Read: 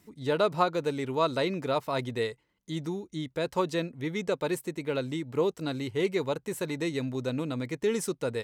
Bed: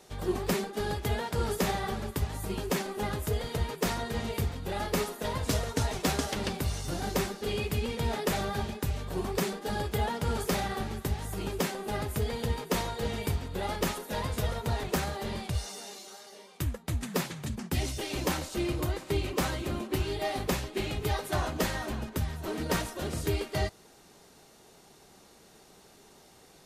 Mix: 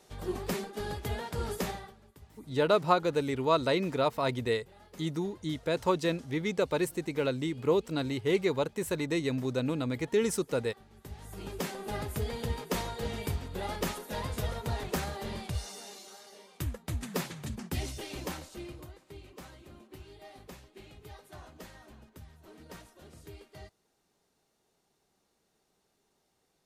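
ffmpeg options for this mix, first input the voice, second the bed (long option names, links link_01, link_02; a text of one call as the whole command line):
ffmpeg -i stem1.wav -i stem2.wav -filter_complex "[0:a]adelay=2300,volume=0.5dB[link_01];[1:a]volume=16dB,afade=type=out:start_time=1.61:duration=0.32:silence=0.112202,afade=type=in:start_time=10.9:duration=0.94:silence=0.0944061,afade=type=out:start_time=17.6:duration=1.33:silence=0.158489[link_02];[link_01][link_02]amix=inputs=2:normalize=0" out.wav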